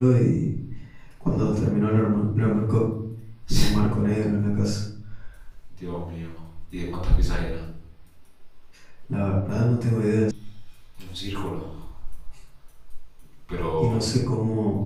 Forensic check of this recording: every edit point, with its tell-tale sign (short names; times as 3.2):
10.31 sound cut off